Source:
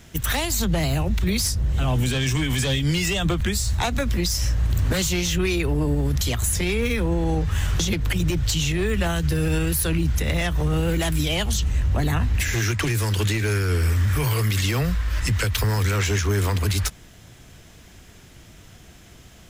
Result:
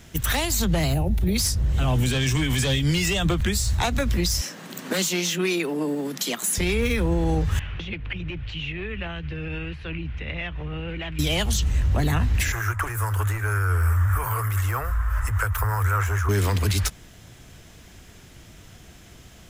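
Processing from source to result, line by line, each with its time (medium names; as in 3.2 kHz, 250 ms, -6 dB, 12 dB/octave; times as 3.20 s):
0.94–1.35 s: time-frequency box 920–8800 Hz -10 dB
4.41–6.58 s: steep high-pass 180 Hz 48 dB/octave
7.59–11.19 s: four-pole ladder low-pass 3 kHz, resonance 55%
12.52–16.29 s: FFT filter 100 Hz 0 dB, 160 Hz -24 dB, 290 Hz -14 dB, 1.3 kHz +8 dB, 2.2 kHz -9 dB, 4.2 kHz -21 dB, 7.5 kHz -7 dB, 12 kHz 0 dB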